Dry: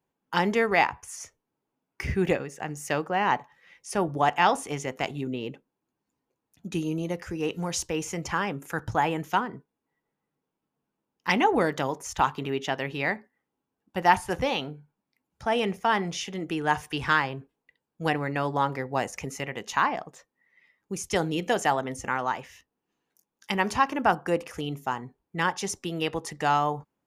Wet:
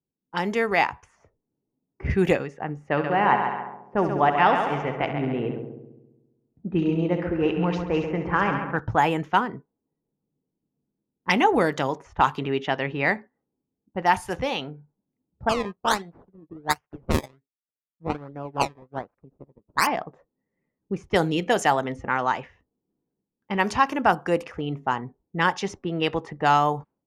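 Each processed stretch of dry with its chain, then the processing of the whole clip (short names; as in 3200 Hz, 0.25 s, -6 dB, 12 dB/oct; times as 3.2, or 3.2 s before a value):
2.9–8.77 LPF 2400 Hz + multi-head echo 68 ms, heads first and second, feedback 58%, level -9.5 dB
15.49–19.87 decimation with a swept rate 21× 1.3 Hz + upward expander 2.5:1, over -43 dBFS
whole clip: low-pass opened by the level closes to 340 Hz, open at -21.5 dBFS; AGC gain up to 10 dB; gain -4 dB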